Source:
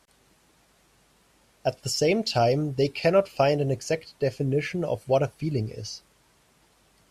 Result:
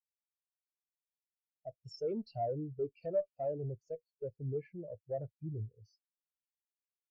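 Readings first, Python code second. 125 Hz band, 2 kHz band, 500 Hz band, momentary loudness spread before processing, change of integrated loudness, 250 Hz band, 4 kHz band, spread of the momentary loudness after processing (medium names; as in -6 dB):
-14.0 dB, under -30 dB, -14.0 dB, 9 LU, -14.5 dB, -15.5 dB, under -25 dB, 11 LU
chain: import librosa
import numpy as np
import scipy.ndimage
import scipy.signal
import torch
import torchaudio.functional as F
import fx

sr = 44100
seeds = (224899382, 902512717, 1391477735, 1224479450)

y = fx.tube_stage(x, sr, drive_db=25.0, bias=0.45)
y = fx.spectral_expand(y, sr, expansion=2.5)
y = F.gain(torch.from_numpy(y), -2.0).numpy()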